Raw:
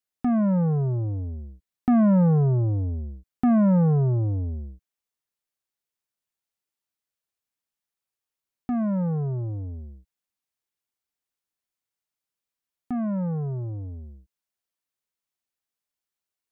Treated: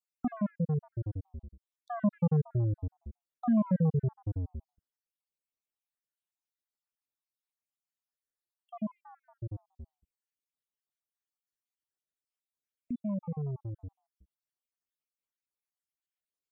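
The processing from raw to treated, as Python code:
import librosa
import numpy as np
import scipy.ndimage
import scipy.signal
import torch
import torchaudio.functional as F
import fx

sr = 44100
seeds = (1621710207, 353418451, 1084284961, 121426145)

y = fx.spec_dropout(x, sr, seeds[0], share_pct=66)
y = F.gain(torch.from_numpy(y), -5.5).numpy()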